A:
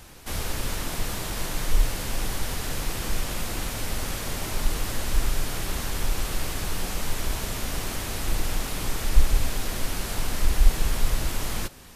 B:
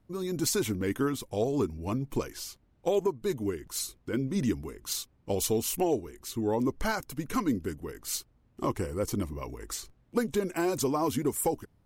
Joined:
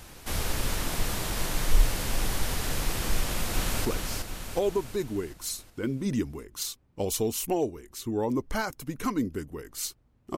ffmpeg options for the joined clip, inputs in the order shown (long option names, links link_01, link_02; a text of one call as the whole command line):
ffmpeg -i cue0.wav -i cue1.wav -filter_complex "[0:a]apad=whole_dur=10.37,atrim=end=10.37,atrim=end=3.852[link_01];[1:a]atrim=start=2.148:end=8.67[link_02];[link_01][link_02]acrossfade=duration=0.004:curve1=hsin:curve2=hsin,asplit=2[link_03][link_04];[link_04]afade=type=in:start_time=3.16:duration=0.01,afade=type=out:start_time=3.85:duration=0.01,aecho=0:1:370|740|1110|1480|1850|2220|2590:0.630957|0.347027|0.190865|0.104976|0.0577365|0.0317551|0.0174653[link_05];[link_03][link_05]amix=inputs=2:normalize=0" out.wav